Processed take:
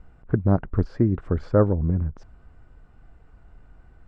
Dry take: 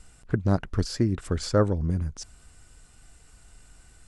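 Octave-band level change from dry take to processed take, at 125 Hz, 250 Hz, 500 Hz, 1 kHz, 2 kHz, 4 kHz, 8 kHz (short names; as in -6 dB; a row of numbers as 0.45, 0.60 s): +3.5 dB, +3.5 dB, +3.5 dB, +1.5 dB, -2.5 dB, under -15 dB, under -25 dB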